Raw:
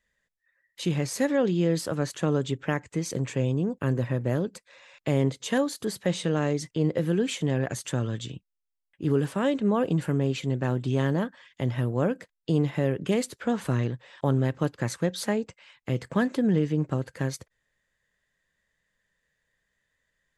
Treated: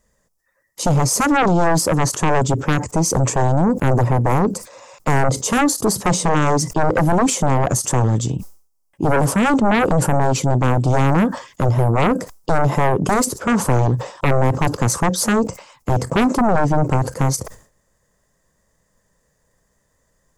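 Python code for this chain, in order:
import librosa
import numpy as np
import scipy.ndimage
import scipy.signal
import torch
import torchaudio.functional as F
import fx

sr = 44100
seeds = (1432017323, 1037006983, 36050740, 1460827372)

y = fx.band_shelf(x, sr, hz=2500.0, db=-15.0, octaves=1.7)
y = fx.fold_sine(y, sr, drive_db=13, ceiling_db=-11.5)
y = fx.sustainer(y, sr, db_per_s=130.0)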